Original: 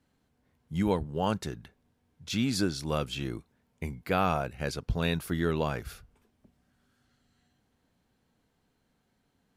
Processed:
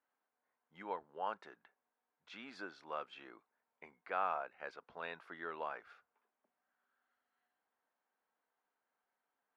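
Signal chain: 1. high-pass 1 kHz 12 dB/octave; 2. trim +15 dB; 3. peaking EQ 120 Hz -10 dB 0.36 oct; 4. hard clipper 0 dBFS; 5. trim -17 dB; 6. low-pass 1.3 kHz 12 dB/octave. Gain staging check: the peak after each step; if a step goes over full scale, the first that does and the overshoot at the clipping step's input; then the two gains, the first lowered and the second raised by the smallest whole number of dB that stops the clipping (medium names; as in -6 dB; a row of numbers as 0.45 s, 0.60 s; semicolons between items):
-17.0 dBFS, -2.0 dBFS, -2.0 dBFS, -2.0 dBFS, -19.0 dBFS, -22.0 dBFS; nothing clips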